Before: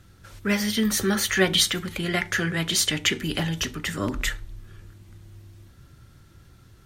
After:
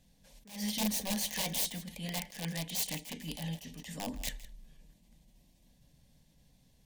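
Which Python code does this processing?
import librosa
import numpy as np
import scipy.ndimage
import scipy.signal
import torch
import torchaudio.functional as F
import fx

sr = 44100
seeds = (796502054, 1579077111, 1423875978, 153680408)

p1 = (np.mod(10.0 ** (17.0 / 20.0) * x + 1.0, 2.0) - 1.0) / 10.0 ** (17.0 / 20.0)
p2 = fx.fixed_phaser(p1, sr, hz=360.0, stages=6)
p3 = p2 + fx.echo_single(p2, sr, ms=162, db=-17.0, dry=0)
p4 = fx.attack_slew(p3, sr, db_per_s=130.0)
y = p4 * librosa.db_to_amplitude(-8.0)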